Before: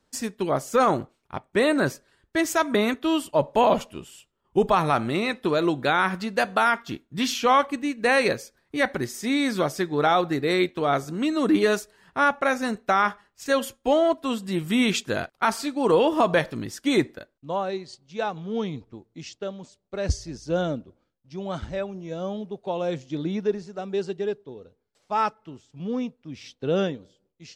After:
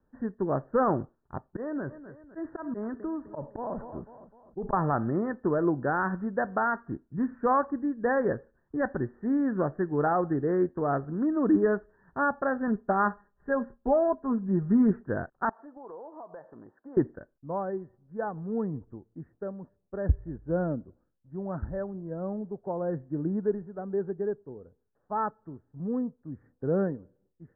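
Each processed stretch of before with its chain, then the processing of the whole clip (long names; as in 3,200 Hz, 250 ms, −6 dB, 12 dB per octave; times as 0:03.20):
0:01.50–0:04.73: repeating echo 254 ms, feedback 47%, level −21.5 dB + volume swells 121 ms + downward compressor 4 to 1, threshold −27 dBFS
0:12.67–0:14.91: high-frequency loss of the air 250 metres + comb filter 4.9 ms
0:15.49–0:16.97: resonant band-pass 770 Hz, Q 1.8 + downward compressor 3 to 1, threshold −41 dBFS
whole clip: Chebyshev low-pass filter 1,800 Hz, order 8; spectral tilt −2 dB per octave; level −5.5 dB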